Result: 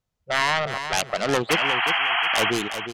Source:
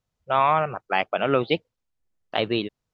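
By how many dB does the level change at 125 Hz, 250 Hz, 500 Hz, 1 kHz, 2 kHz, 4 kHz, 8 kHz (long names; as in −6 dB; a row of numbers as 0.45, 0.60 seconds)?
−1.0 dB, −1.0 dB, −1.5 dB, −1.0 dB, +9.0 dB, +9.0 dB, can't be measured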